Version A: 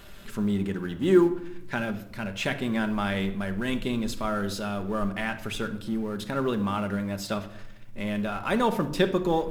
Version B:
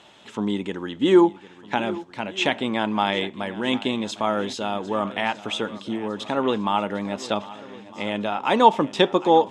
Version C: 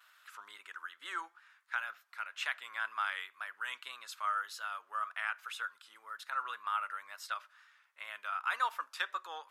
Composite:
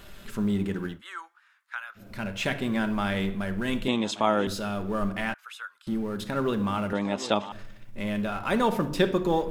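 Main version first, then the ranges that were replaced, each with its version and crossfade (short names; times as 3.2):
A
0.94–2.03 from C, crossfade 0.16 s
3.88–4.47 from B
5.34–5.87 from C
6.93–7.52 from B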